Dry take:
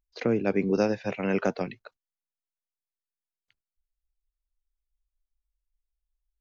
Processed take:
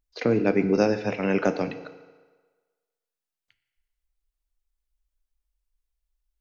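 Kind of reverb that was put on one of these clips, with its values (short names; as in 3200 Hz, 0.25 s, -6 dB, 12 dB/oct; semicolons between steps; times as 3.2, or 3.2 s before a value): FDN reverb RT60 1.4 s, low-frequency decay 0.75×, high-frequency decay 0.85×, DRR 9 dB; gain +3 dB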